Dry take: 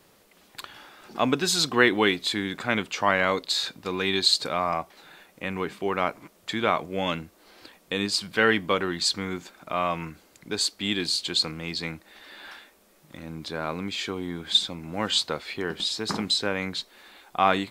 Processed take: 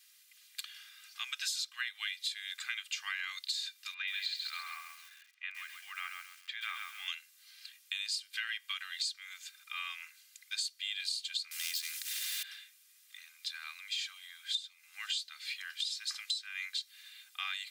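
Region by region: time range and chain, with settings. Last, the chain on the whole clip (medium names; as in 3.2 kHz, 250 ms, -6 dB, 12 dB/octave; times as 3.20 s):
3.94–7.08 s: low-pass 2.4 kHz + bit-crushed delay 133 ms, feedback 35%, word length 8-bit, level -5.5 dB
11.51–12.43 s: waveshaping leveller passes 2 + treble shelf 3.9 kHz +5.5 dB + spectrum-flattening compressor 2:1
whole clip: Bessel high-pass 2.8 kHz, order 6; comb 2.5 ms, depth 59%; compression 16:1, threshold -33 dBFS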